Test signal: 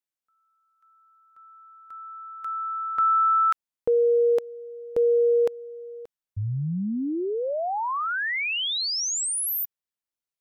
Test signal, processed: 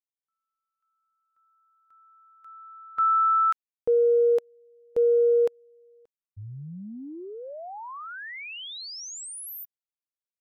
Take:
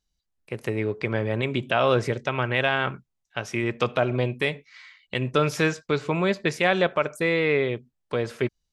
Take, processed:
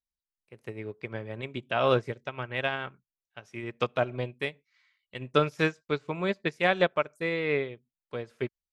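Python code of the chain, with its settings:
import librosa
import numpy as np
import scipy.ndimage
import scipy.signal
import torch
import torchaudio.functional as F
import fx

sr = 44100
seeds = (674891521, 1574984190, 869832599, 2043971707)

y = fx.upward_expand(x, sr, threshold_db=-31.0, expansion=2.5)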